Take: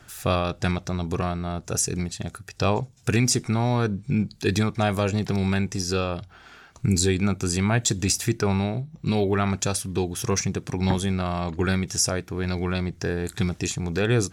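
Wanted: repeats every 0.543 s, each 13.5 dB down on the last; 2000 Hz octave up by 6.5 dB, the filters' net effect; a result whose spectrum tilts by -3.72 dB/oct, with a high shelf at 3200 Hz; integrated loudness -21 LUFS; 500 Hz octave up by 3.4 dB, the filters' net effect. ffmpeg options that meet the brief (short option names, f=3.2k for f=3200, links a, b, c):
-af "equalizer=f=500:t=o:g=4,equalizer=f=2k:t=o:g=6,highshelf=f=3.2k:g=6.5,aecho=1:1:543|1086:0.211|0.0444,volume=1dB"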